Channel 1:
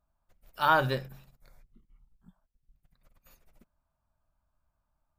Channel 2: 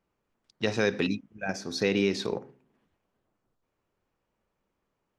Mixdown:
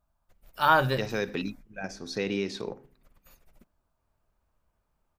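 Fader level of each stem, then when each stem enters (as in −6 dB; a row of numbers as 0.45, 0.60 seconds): +2.5, −4.5 decibels; 0.00, 0.35 seconds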